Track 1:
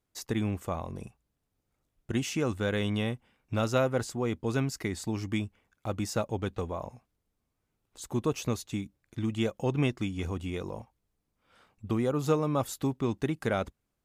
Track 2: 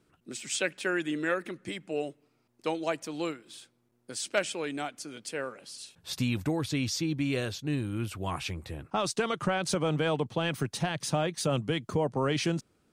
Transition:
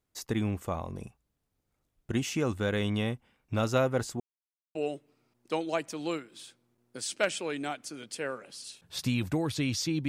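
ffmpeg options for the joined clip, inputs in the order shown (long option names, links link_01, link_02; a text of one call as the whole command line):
ffmpeg -i cue0.wav -i cue1.wav -filter_complex "[0:a]apad=whole_dur=10.08,atrim=end=10.08,asplit=2[link_01][link_02];[link_01]atrim=end=4.2,asetpts=PTS-STARTPTS,afade=type=out:start_time=4.196:duration=0.004:curve=hsin[link_03];[link_02]atrim=start=4.2:end=4.75,asetpts=PTS-STARTPTS,volume=0[link_04];[1:a]atrim=start=1.89:end=7.22,asetpts=PTS-STARTPTS,afade=type=in:duration=0.004:curve=hsin[link_05];[link_03][link_04][link_05]concat=n=3:v=0:a=1" out.wav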